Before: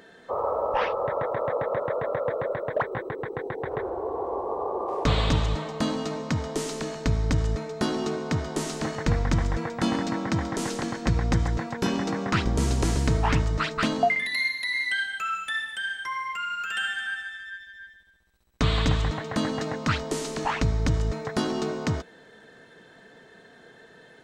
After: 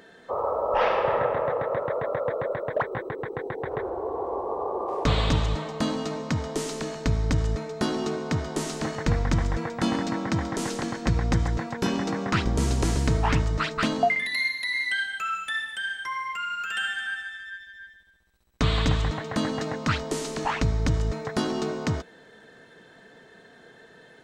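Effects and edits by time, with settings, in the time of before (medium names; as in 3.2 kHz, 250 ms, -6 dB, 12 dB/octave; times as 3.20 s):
0.64–1.14 s: reverb throw, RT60 2.1 s, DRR -1.5 dB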